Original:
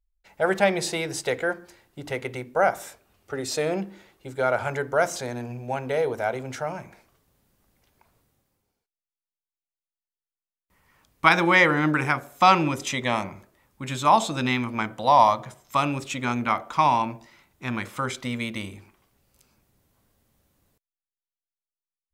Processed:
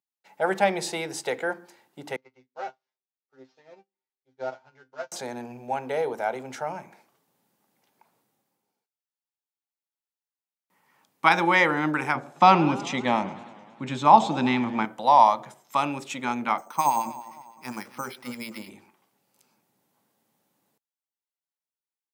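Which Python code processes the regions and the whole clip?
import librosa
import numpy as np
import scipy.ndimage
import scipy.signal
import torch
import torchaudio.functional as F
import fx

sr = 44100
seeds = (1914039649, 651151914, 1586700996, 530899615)

y = fx.chain(x, sr, fx.cvsd(bps=32000),
    fx.comb_fb(f0_hz=130.0, decay_s=0.18, harmonics='all', damping=0.0, mix_pct=100),
    fx.upward_expand(threshold_db=-49.0, expansion=2.5), at=(2.16, 5.12))
y = fx.chain(y, sr, fx.lowpass(hz=5700.0, slope=12),
    fx.low_shelf(hz=420.0, db=8.5),
    fx.echo_warbled(ms=103, feedback_pct=72, rate_hz=2.8, cents=199, wet_db=-19.0), at=(12.15, 14.85))
y = fx.chain(y, sr, fx.echo_feedback(ms=262, feedback_pct=40, wet_db=-16.5),
    fx.harmonic_tremolo(hz=9.9, depth_pct=70, crossover_hz=1200.0),
    fx.resample_bad(factor=6, down='filtered', up='hold'), at=(16.58, 18.7))
y = scipy.signal.sosfilt(scipy.signal.butter(4, 160.0, 'highpass', fs=sr, output='sos'), y)
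y = fx.peak_eq(y, sr, hz=850.0, db=8.0, octaves=0.27)
y = y * 10.0 ** (-3.0 / 20.0)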